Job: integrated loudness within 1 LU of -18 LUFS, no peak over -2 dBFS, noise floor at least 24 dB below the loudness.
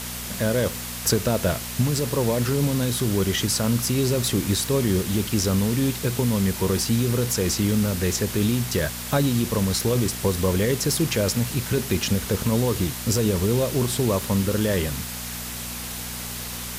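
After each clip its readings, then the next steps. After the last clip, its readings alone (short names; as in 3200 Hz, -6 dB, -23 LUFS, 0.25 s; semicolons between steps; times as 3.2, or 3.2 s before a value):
hum 60 Hz; harmonics up to 240 Hz; hum level -35 dBFS; noise floor -33 dBFS; noise floor target -47 dBFS; loudness -23.0 LUFS; peak -8.5 dBFS; loudness target -18.0 LUFS
-> de-hum 60 Hz, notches 4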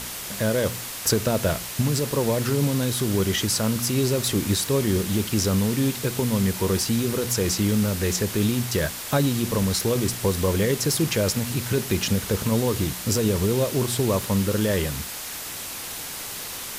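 hum none; noise floor -34 dBFS; noise floor target -48 dBFS
-> denoiser 14 dB, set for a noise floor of -34 dBFS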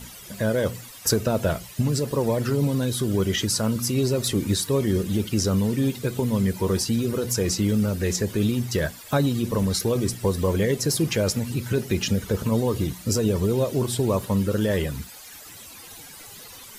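noise floor -43 dBFS; noise floor target -48 dBFS
-> denoiser 6 dB, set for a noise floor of -43 dBFS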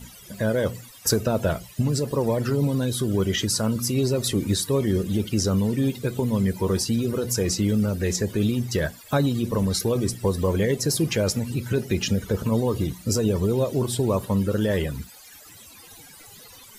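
noise floor -47 dBFS; noise floor target -48 dBFS
-> denoiser 6 dB, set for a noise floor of -47 dBFS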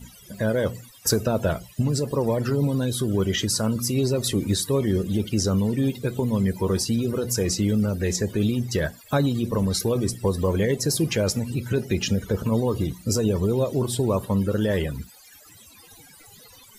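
noise floor -50 dBFS; loudness -24.0 LUFS; peak -9.0 dBFS; loudness target -18.0 LUFS
-> gain +6 dB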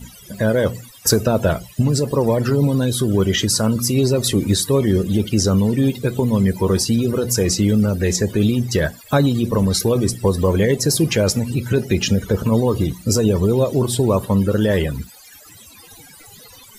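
loudness -18.0 LUFS; peak -3.0 dBFS; noise floor -44 dBFS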